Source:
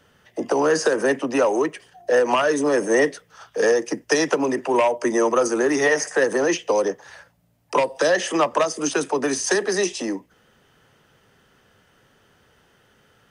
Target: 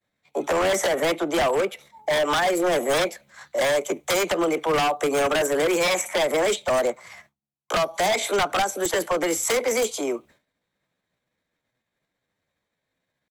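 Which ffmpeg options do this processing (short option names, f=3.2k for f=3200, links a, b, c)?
-af "asetrate=53981,aresample=44100,atempo=0.816958,agate=range=-33dB:threshold=-45dB:ratio=3:detection=peak,aeval=exprs='0.158*(abs(mod(val(0)/0.158+3,4)-2)-1)':c=same"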